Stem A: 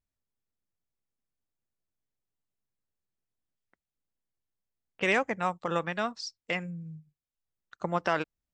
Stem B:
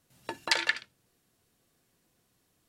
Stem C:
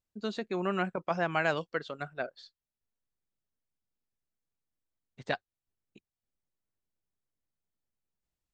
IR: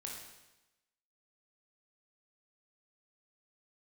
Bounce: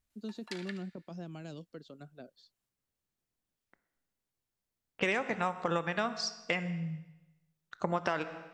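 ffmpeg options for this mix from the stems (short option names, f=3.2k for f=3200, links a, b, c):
-filter_complex "[0:a]volume=1.5dB,asplit=2[a][b];[b]volume=-7dB[c];[1:a]highpass=870,volume=-19.5dB,asplit=2[d][e];[e]volume=-6.5dB[f];[2:a]acrossover=split=310|3000[g][h][i];[h]acompressor=threshold=-39dB:ratio=4[j];[g][j][i]amix=inputs=3:normalize=0,equalizer=f=250:t=o:w=1:g=6,equalizer=f=1k:t=o:w=1:g=-6,equalizer=f=2k:t=o:w=1:g=-12,volume=-7.5dB[k];[3:a]atrim=start_sample=2205[l];[c][f]amix=inputs=2:normalize=0[m];[m][l]afir=irnorm=-1:irlink=0[n];[a][d][k][n]amix=inputs=4:normalize=0,acompressor=threshold=-27dB:ratio=6"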